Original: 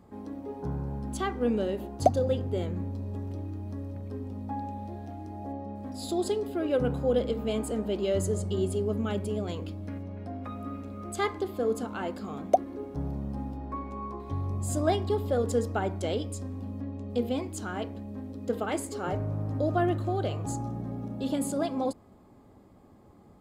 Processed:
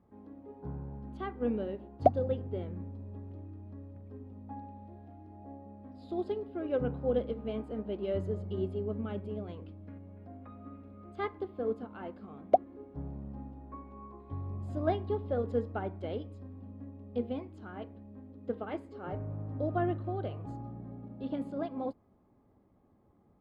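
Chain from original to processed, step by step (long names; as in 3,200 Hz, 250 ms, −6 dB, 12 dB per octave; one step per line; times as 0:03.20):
high-frequency loss of the air 370 metres
expander for the loud parts 1.5 to 1, over −38 dBFS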